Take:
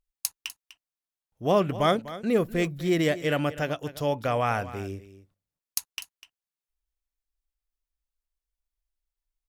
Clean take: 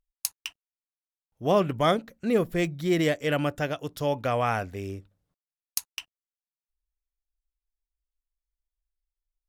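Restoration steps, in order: inverse comb 0.249 s -15.5 dB

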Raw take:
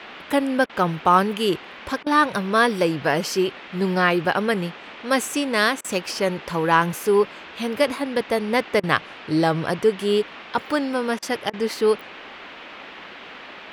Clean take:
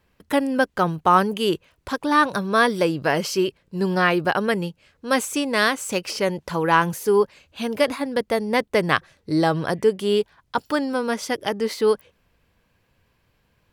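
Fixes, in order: interpolate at 0.66/2.03/5.81/8.8/11.19/11.5, 33 ms; noise print and reduce 25 dB

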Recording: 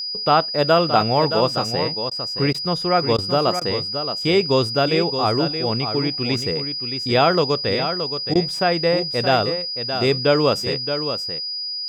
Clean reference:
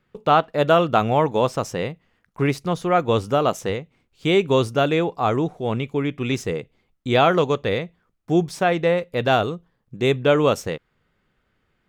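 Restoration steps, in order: notch 4900 Hz, Q 30; interpolate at 2.1/2.53/3.17/3.6/8.34, 12 ms; inverse comb 0.622 s -8.5 dB

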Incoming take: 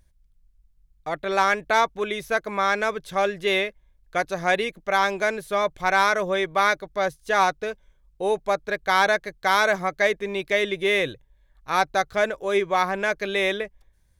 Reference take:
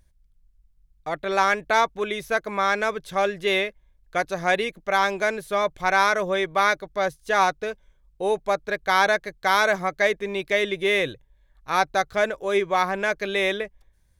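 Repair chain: clip repair -8.5 dBFS

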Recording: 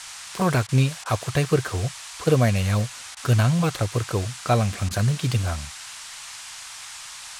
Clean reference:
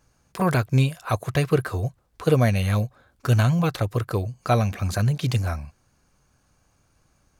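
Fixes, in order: interpolate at 0.67/1.04/3.15/4.89, 16 ms; noise print and reduce 26 dB

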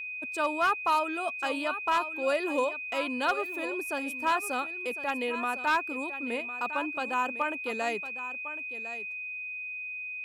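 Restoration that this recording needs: clip repair -19 dBFS; notch 2500 Hz, Q 30; inverse comb 1.054 s -12.5 dB

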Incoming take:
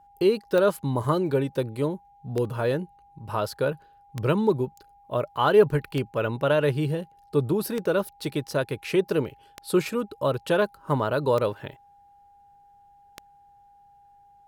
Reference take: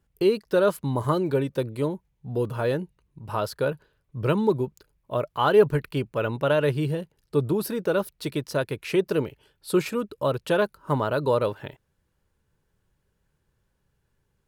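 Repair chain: de-click; notch 810 Hz, Q 30

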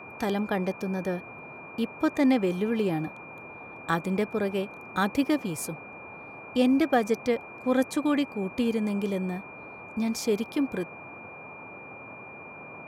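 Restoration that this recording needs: notch 2400 Hz, Q 30; noise print and reduce 28 dB

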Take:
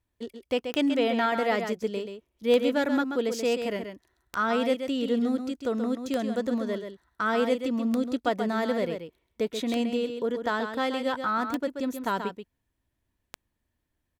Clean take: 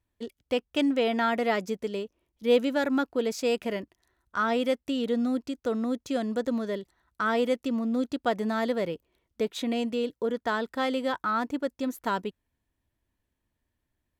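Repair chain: de-click; inverse comb 0.132 s -7.5 dB

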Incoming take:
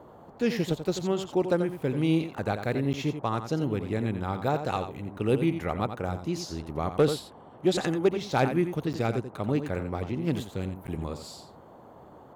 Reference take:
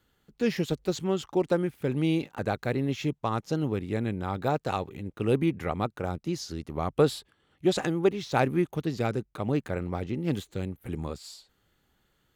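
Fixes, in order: clip repair -14 dBFS; interpolate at 2.93/8.93/10.87, 9.1 ms; noise print and reduce 21 dB; inverse comb 87 ms -9.5 dB

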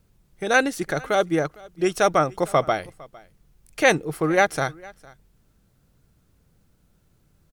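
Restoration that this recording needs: inverse comb 0.456 s -23.5 dB

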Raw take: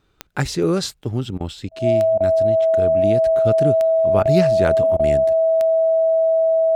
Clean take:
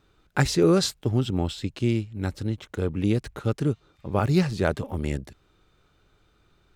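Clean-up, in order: de-click; notch 650 Hz, Q 30; interpolate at 1.38/1.69/2.18/4.23/4.97, 23 ms; gain 0 dB, from 3.46 s -3 dB

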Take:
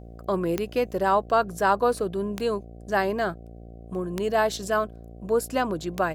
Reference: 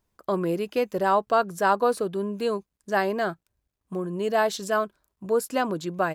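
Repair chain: de-click; de-hum 57.5 Hz, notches 13

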